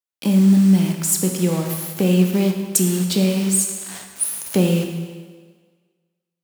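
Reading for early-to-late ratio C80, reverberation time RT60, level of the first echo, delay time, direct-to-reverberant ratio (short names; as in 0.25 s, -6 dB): 6.5 dB, 1.6 s, none, none, 3.0 dB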